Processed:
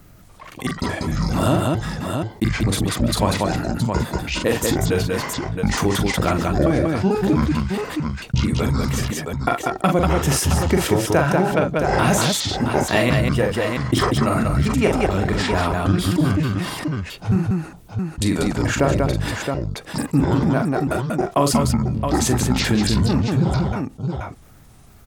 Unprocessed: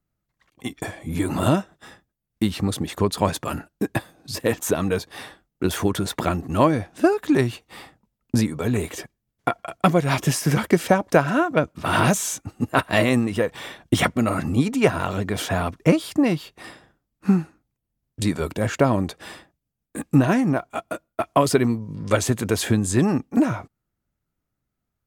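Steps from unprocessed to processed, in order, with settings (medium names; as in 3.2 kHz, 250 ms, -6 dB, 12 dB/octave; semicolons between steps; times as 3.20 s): pitch shift switched off and on -10 st, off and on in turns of 222 ms; multi-tap echo 42/190/670 ms -6.5/-5/-11.5 dB; level flattener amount 50%; trim -2.5 dB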